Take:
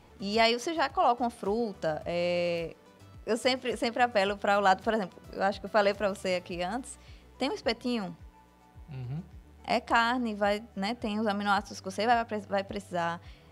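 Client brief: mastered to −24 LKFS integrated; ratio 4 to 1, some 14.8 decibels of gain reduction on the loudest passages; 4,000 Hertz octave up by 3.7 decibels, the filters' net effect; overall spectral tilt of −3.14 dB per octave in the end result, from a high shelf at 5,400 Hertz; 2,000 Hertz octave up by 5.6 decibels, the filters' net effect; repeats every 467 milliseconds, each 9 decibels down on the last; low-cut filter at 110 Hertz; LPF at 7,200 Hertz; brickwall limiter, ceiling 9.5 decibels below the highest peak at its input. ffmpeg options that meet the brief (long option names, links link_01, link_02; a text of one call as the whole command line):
ffmpeg -i in.wav -af "highpass=110,lowpass=7200,equalizer=frequency=2000:width_type=o:gain=7,equalizer=frequency=4000:width_type=o:gain=4.5,highshelf=frequency=5400:gain=-5.5,acompressor=threshold=-35dB:ratio=4,alimiter=level_in=3.5dB:limit=-24dB:level=0:latency=1,volume=-3.5dB,aecho=1:1:467|934|1401|1868:0.355|0.124|0.0435|0.0152,volume=16dB" out.wav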